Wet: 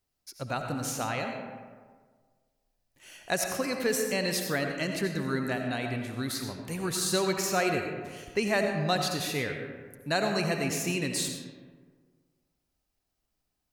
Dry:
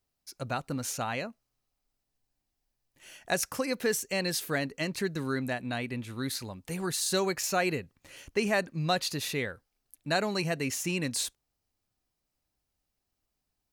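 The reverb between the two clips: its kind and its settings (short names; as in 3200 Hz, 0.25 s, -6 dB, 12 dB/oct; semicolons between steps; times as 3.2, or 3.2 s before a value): digital reverb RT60 1.6 s, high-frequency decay 0.45×, pre-delay 45 ms, DRR 3.5 dB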